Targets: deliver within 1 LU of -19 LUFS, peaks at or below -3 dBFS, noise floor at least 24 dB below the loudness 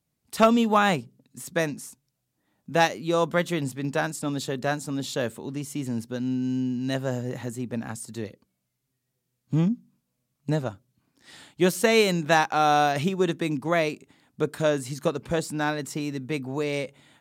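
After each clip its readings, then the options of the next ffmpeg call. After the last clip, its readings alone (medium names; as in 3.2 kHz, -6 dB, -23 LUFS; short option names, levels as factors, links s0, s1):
loudness -26.0 LUFS; peak level -7.5 dBFS; loudness target -19.0 LUFS
-> -af "volume=2.24,alimiter=limit=0.708:level=0:latency=1"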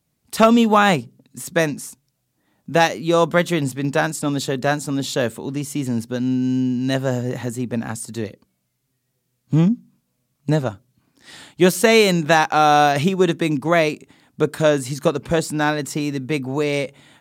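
loudness -19.5 LUFS; peak level -3.0 dBFS; noise floor -72 dBFS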